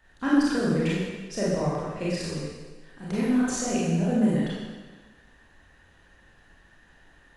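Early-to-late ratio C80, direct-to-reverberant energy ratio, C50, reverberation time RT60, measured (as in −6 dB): 0.5 dB, −8.0 dB, −2.0 dB, 1.4 s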